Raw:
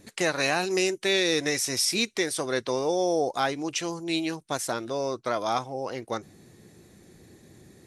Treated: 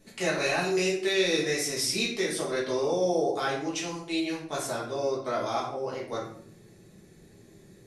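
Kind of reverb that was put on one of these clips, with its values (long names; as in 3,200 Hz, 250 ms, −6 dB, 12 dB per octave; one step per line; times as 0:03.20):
rectangular room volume 90 cubic metres, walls mixed, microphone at 1.5 metres
level −8.5 dB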